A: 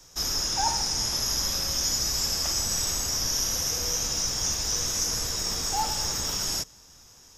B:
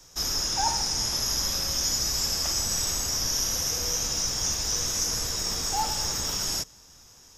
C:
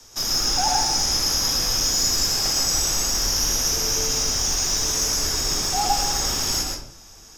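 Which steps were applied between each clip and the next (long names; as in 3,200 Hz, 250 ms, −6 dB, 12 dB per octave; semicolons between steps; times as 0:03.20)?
no processing that can be heard
frequency shifter −46 Hz; in parallel at −4 dB: hard clipping −27 dBFS, distortion −10 dB; on the sum: convolution reverb RT60 0.60 s, pre-delay 109 ms, DRR 0.5 dB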